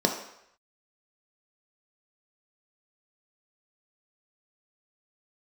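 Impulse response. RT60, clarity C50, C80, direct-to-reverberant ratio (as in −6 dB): 0.75 s, 7.0 dB, 10.0 dB, 2.0 dB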